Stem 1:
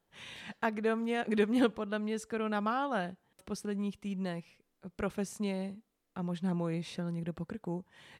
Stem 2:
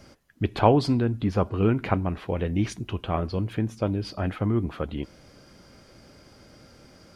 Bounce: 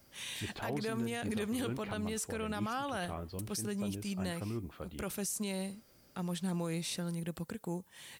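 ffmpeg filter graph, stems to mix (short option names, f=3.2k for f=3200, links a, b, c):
-filter_complex "[0:a]aemphasis=mode=production:type=75kf,volume=-1.5dB[a];[1:a]volume=-14.5dB[b];[a][b]amix=inputs=2:normalize=0,highshelf=f=4.2k:g=5.5,alimiter=level_in=3.5dB:limit=-24dB:level=0:latency=1:release=29,volume=-3.5dB"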